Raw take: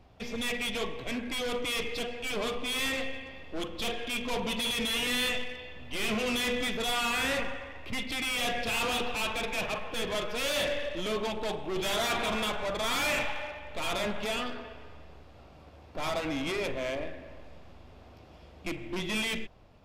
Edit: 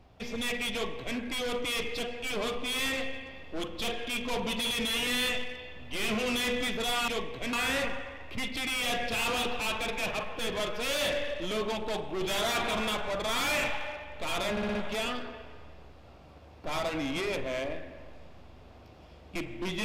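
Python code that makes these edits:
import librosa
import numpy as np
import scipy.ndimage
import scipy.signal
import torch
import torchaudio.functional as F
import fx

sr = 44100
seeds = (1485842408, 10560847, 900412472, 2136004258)

y = fx.edit(x, sr, fx.duplicate(start_s=0.73, length_s=0.45, to_s=7.08),
    fx.stutter(start_s=14.06, slice_s=0.06, count=5), tone=tone)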